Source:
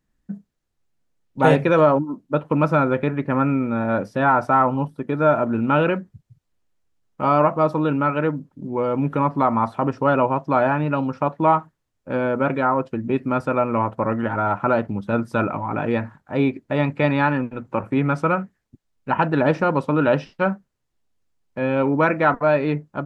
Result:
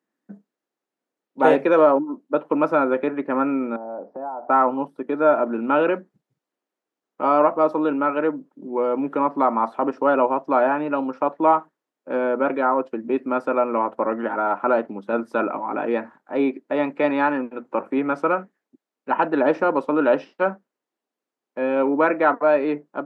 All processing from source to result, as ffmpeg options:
ffmpeg -i in.wav -filter_complex "[0:a]asettb=1/sr,asplit=3[link_01][link_02][link_03];[link_01]atrim=end=3.764[link_04];[link_02]atrim=start=3.76:end=4.5,asetpts=PTS-STARTPTS,afade=type=in:duration=0.004:curve=qsin,afade=type=out:start_time=0.736:duration=0.004:curve=qsin,acompressor=threshold=-32dB:ratio=8:attack=3.2:release=140:knee=1:detection=peak,lowpass=frequency=770:width_type=q:width=2.8[link_05];[link_03]atrim=start=4.496[link_06];[link_04][link_05]acrossfade=duration=0.004:curve1=hsin:curve2=qsin[link_07];[link_07][link_06]acrossfade=duration=0.004:curve1=qsin:curve2=hsin,highpass=frequency=270:width=0.5412,highpass=frequency=270:width=1.3066,highshelf=frequency=2300:gain=-10,volume=1.5dB" out.wav

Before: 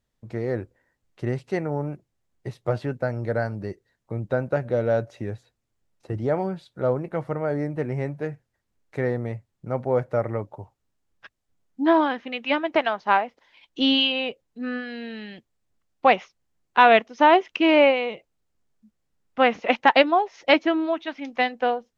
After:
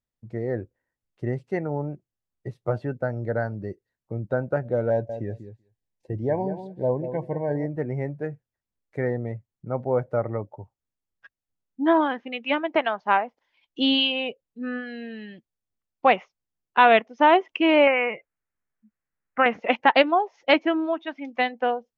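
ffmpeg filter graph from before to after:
ffmpeg -i in.wav -filter_complex "[0:a]asettb=1/sr,asplit=3[link_01][link_02][link_03];[link_01]atrim=end=4.904[link_04];[link_02]atrim=start=4.9:end=7.66,asetpts=PTS-STARTPTS,afade=type=in:duration=0.004:curve=qsin,afade=type=out:start_time=2.756:duration=0.004:curve=qsin,asuperstop=centerf=1300:order=20:qfactor=3,asplit=2[link_05][link_06];[link_06]adelay=191,lowpass=frequency=4100:poles=1,volume=-10dB,asplit=2[link_07][link_08];[link_08]adelay=191,lowpass=frequency=4100:poles=1,volume=0.15[link_09];[link_05][link_07][link_09]amix=inputs=3:normalize=0,atrim=end_sample=121716[link_10];[link_03]atrim=start=7.656[link_11];[link_04][link_10]acrossfade=duration=0.004:curve1=hsin:curve2=qsin[link_12];[link_12][link_11]acrossfade=duration=0.004:curve1=qsin:curve2=hsin,asettb=1/sr,asplit=3[link_13][link_14][link_15];[link_13]atrim=end=17.874[link_16];[link_14]atrim=start=17.87:end=19.46,asetpts=PTS-STARTPTS,afade=type=in:duration=0.004:curve=qsin,afade=type=out:start_time=1.586:duration=0.004:curve=qsin,equalizer=frequency=1700:width=0.9:gain=12.5,acompressor=threshold=-14dB:ratio=2.5:attack=3.2:release=140:knee=1:detection=peak,asuperstop=centerf=4200:order=4:qfactor=1.1[link_17];[link_15]atrim=start=19.456[link_18];[link_16][link_17]acrossfade=duration=0.004:curve1=hsin:curve2=qsin[link_19];[link_19][link_18]acrossfade=duration=0.004:curve1=qsin:curve2=hsin,afftdn=noise_reduction=12:noise_floor=-38,bandreject=frequency=3900:width=25,volume=-1dB" out.wav

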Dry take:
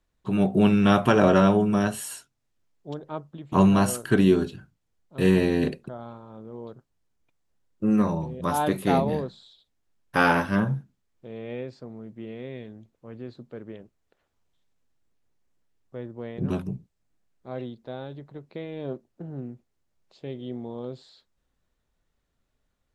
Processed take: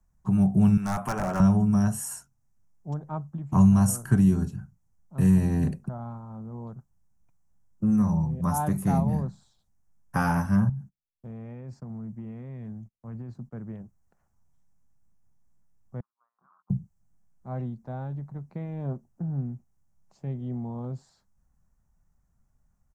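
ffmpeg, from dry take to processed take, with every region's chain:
ffmpeg -i in.wav -filter_complex "[0:a]asettb=1/sr,asplit=3[link_01][link_02][link_03];[link_01]atrim=end=0.774[link_04];[link_02]atrim=start=0.77:end=1.4,asetpts=PTS-STARTPTS,afade=type=in:duration=0.004:curve=qsin,afade=type=out:start_time=0.626:duration=0.004:curve=qsin,highpass=frequency=780:poles=1,equalizer=frequency=5700:width_type=o:width=0.48:gain=-10.5,aeval=exprs='0.141*(abs(mod(val(0)/0.141+3,4)-2)-1)':channel_layout=same[link_05];[link_03]atrim=start=1.396[link_06];[link_04][link_05]acrossfade=duration=0.004:curve1=hsin:curve2=qsin[link_07];[link_07][link_06]acrossfade=duration=0.004:curve1=qsin:curve2=hsin,asettb=1/sr,asplit=3[link_08][link_09][link_10];[link_08]atrim=end=10.694[link_11];[link_09]atrim=start=10.69:end=13.53,asetpts=PTS-STARTPTS,afade=type=in:duration=0.004:curve=qsin,afade=type=out:start_time=2.836:duration=0.004:curve=qsin,agate=range=-29dB:threshold=-58dB:ratio=16:release=100:detection=peak,acompressor=threshold=-35dB:ratio=16:attack=3.2:release=140:knee=1:detection=peak[link_12];[link_10]atrim=start=13.526[link_13];[link_11][link_12]acrossfade=duration=0.004:curve1=hsin:curve2=qsin[link_14];[link_14][link_13]acrossfade=duration=0.004:curve1=qsin:curve2=hsin,asettb=1/sr,asplit=3[link_15][link_16][link_17];[link_15]atrim=end=16.004[link_18];[link_16]atrim=start=16:end=16.7,asetpts=PTS-STARTPTS,afade=type=in:duration=0.004:curve=qsin,afade=type=out:start_time=0.696:duration=0.004:curve=qsin,agate=range=-24dB:threshold=-33dB:ratio=16:release=100:detection=peak,asuperpass=centerf=1200:order=4:qfactor=3.4,acompressor=threshold=-60dB:ratio=6:attack=3.2:release=140:knee=1:detection=peak[link_19];[link_17]atrim=start=16.696[link_20];[link_18][link_19]acrossfade=duration=0.004:curve1=hsin:curve2=qsin[link_21];[link_21][link_20]acrossfade=duration=0.004:curve1=qsin:curve2=hsin,firequalizer=gain_entry='entry(190,0);entry(290,-13);entry(470,-17);entry(780,-6);entry(3600,-29);entry(5800,-7)':delay=0.05:min_phase=1,acrossover=split=130|3000[link_22][link_23][link_24];[link_23]acompressor=threshold=-37dB:ratio=2[link_25];[link_22][link_25][link_24]amix=inputs=3:normalize=0,volume=8.5dB" out.wav

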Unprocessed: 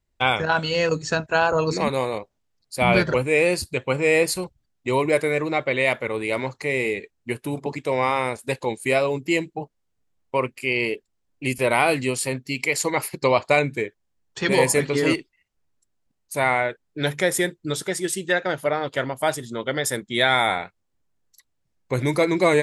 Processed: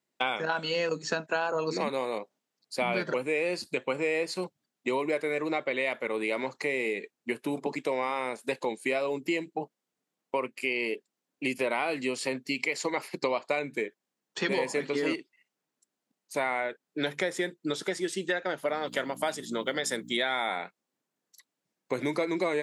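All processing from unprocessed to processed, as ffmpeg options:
ffmpeg -i in.wav -filter_complex "[0:a]asettb=1/sr,asplit=3[link_01][link_02][link_03];[link_01]atrim=end=18.684[link_04];[link_02]atrim=start=18.68:end=20.17,asetpts=PTS-STARTPTS,afade=type=in:duration=0.004:curve=qsin,afade=type=out:start_time=1.486:duration=0.004:curve=qsin,aemphasis=mode=production:type=50fm,aeval=exprs='val(0)+0.02*(sin(2*PI*60*n/s)+sin(2*PI*2*60*n/s)/2+sin(2*PI*3*60*n/s)/3+sin(2*PI*4*60*n/s)/4+sin(2*PI*5*60*n/s)/5)':channel_layout=same[link_05];[link_03]atrim=start=20.166[link_06];[link_04][link_05]acrossfade=duration=0.004:curve1=hsin:curve2=qsin[link_07];[link_07][link_06]acrossfade=duration=0.004:curve1=qsin:curve2=hsin,acrossover=split=6400[link_08][link_09];[link_09]acompressor=threshold=-49dB:ratio=4:attack=1:release=60[link_10];[link_08][link_10]amix=inputs=2:normalize=0,highpass=frequency=190:width=0.5412,highpass=frequency=190:width=1.3066,acompressor=threshold=-27dB:ratio=4" out.wav

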